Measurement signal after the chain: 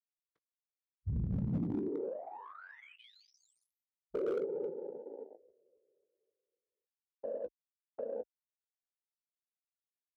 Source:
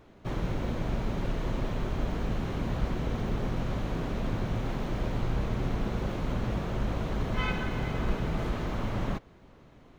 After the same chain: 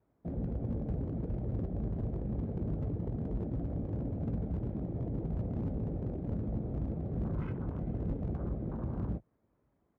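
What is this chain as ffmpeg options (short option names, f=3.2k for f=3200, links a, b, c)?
-filter_complex "[0:a]afftfilt=real='hypot(re,im)*cos(2*PI*random(0))':imag='hypot(re,im)*sin(2*PI*random(1))':win_size=512:overlap=0.75,bandreject=f=2.8k:w=12,afwtdn=0.0126,acrossover=split=400[a][b];[b]acompressor=threshold=-51dB:ratio=8[c];[a][c]amix=inputs=2:normalize=0,highpass=f=40:w=0.5412,highpass=f=40:w=1.3066,adynamicsmooth=sensitivity=4:basefreq=1.8k,volume=32.5dB,asoftclip=hard,volume=-32.5dB,asplit=2[d][e];[e]adelay=18,volume=-11dB[f];[d][f]amix=inputs=2:normalize=0,volume=3.5dB"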